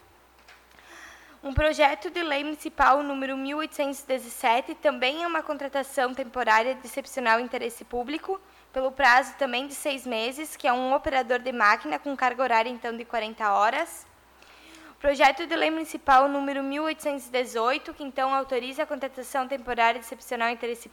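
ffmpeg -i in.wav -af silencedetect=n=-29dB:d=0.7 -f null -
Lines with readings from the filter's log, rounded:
silence_start: 0.00
silence_end: 1.45 | silence_duration: 1.45
silence_start: 13.93
silence_end: 15.04 | silence_duration: 1.12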